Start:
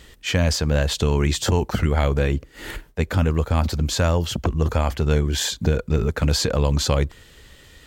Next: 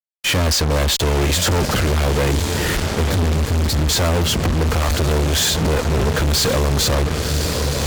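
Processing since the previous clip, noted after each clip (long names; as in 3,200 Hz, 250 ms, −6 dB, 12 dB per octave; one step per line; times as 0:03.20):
gain on a spectral selection 0:03.05–0:03.89, 280–3,400 Hz −12 dB
feedback delay with all-pass diffusion 1,085 ms, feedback 53%, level −12 dB
fuzz pedal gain 36 dB, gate −35 dBFS
level −2 dB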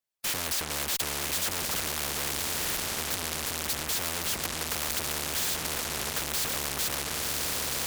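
every bin compressed towards the loudest bin 4 to 1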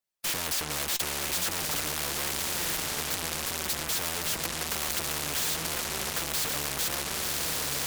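flanger 0.84 Hz, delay 5.1 ms, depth 1.8 ms, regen +65%
level +4.5 dB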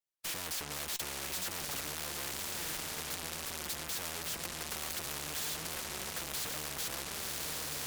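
tape wow and flutter 74 cents
level −8 dB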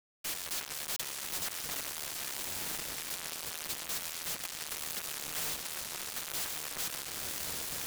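bit-depth reduction 6 bits, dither none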